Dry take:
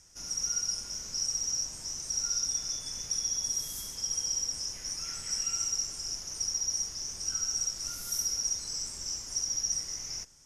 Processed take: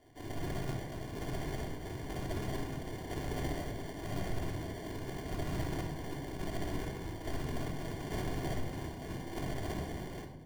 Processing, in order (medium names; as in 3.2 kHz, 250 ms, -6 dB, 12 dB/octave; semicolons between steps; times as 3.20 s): spectral gate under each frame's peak -15 dB weak; treble shelf 4.8 kHz -11 dB; sample-and-hold 34×; simulated room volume 2900 m³, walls furnished, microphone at 3.2 m; trim +7.5 dB